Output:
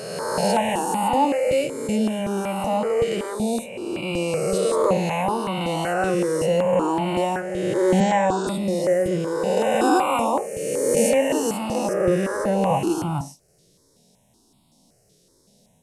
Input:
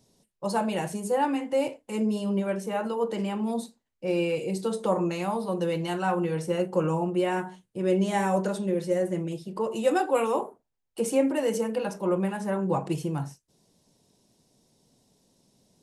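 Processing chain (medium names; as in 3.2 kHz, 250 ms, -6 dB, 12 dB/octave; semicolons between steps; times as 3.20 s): reverse spectral sustain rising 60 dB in 2.18 s; 8.00–8.47 s: Chebyshev band-pass 120–7700 Hz, order 5; stepped phaser 5.3 Hz 240–1700 Hz; trim +5 dB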